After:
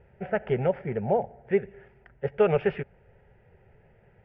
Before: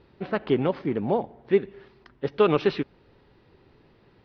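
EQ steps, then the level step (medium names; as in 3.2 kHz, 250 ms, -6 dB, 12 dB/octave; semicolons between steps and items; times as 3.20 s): distance through air 390 m; static phaser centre 1.1 kHz, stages 6; +4.0 dB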